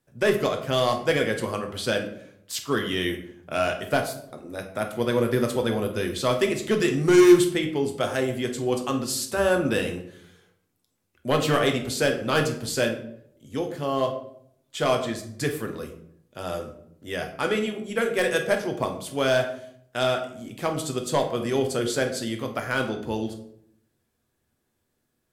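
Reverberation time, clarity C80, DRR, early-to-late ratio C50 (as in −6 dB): 0.65 s, 12.0 dB, 3.5 dB, 9.0 dB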